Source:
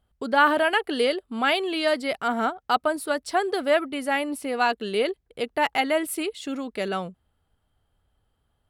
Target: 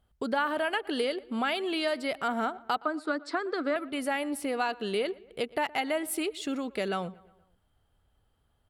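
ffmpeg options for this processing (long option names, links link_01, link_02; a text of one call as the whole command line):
ffmpeg -i in.wav -filter_complex "[0:a]asettb=1/sr,asplit=3[link_01][link_02][link_03];[link_01]atrim=end=2.834[link_04];[link_02]atrim=start=2.83:end=3.76,asetpts=PTS-STARTPTS,afade=type=in:duration=0.004:curve=qsin,afade=type=out:start_time=0.926:duration=0.004:curve=qsin,highpass=frequency=260:width=0.5412,highpass=frequency=260:width=1.3066,equalizer=frequency=290:width_type=q:width=4:gain=8,equalizer=frequency=410:width_type=q:width=4:gain=-4,equalizer=frequency=780:width_type=q:width=4:gain=-8,equalizer=frequency=1300:width_type=q:width=4:gain=8,equalizer=frequency=3000:width_type=q:width=4:gain=-10,equalizer=frequency=5800:width_type=q:width=4:gain=-9,lowpass=frequency=6300:width=0.5412,lowpass=frequency=6300:width=1.3066[link_05];[link_03]atrim=start=3.756[link_06];[link_04][link_05]acrossfade=duration=0.004:curve1=hsin:curve2=qsin[link_07];[link_07][link_06]acrossfade=duration=0.004:curve1=qsin:curve2=hsin,acompressor=threshold=-28dB:ratio=3,asplit=2[link_08][link_09];[link_09]adelay=118,lowpass=frequency=3200:poles=1,volume=-21.5dB,asplit=2[link_10][link_11];[link_11]adelay=118,lowpass=frequency=3200:poles=1,volume=0.55,asplit=2[link_12][link_13];[link_13]adelay=118,lowpass=frequency=3200:poles=1,volume=0.55,asplit=2[link_14][link_15];[link_15]adelay=118,lowpass=frequency=3200:poles=1,volume=0.55[link_16];[link_08][link_10][link_12][link_14][link_16]amix=inputs=5:normalize=0" out.wav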